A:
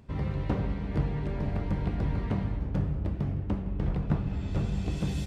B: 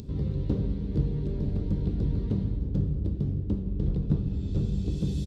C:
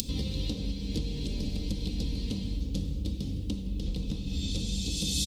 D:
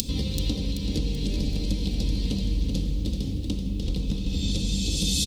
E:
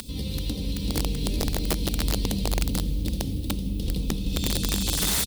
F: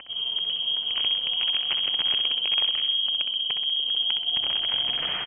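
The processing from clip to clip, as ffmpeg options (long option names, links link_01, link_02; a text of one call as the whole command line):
ffmpeg -i in.wav -af "highshelf=frequency=3800:gain=-9.5,acompressor=mode=upward:threshold=-33dB:ratio=2.5,firequalizer=gain_entry='entry(430,0);entry(680,-15);entry(2100,-16);entry(3700,2)':delay=0.05:min_phase=1,volume=2dB" out.wav
ffmpeg -i in.wav -af "aecho=1:1:3.9:0.56,alimiter=limit=-23dB:level=0:latency=1:release=388,aexciter=amount=6.5:drive=9:freq=2400" out.wav
ffmpeg -i in.wav -af "aecho=1:1:383|766|1149|1532|1915:0.447|0.197|0.0865|0.0381|0.0167,volume=4.5dB" out.wav
ffmpeg -i in.wav -af "alimiter=limit=-14dB:level=0:latency=1:release=424,aexciter=amount=4.5:drive=3.4:freq=9000,aeval=exprs='(mod(7.5*val(0)+1,2)-1)/7.5':channel_layout=same" out.wav
ffmpeg -i in.wav -filter_complex "[0:a]lowpass=frequency=2800:width_type=q:width=0.5098,lowpass=frequency=2800:width_type=q:width=0.6013,lowpass=frequency=2800:width_type=q:width=0.9,lowpass=frequency=2800:width_type=q:width=2.563,afreqshift=-3300,asplit=2[link_01][link_02];[link_02]aecho=0:1:64|128|192|256|320|384:0.447|0.232|0.121|0.0628|0.0327|0.017[link_03];[link_01][link_03]amix=inputs=2:normalize=0,volume=-1dB" out.wav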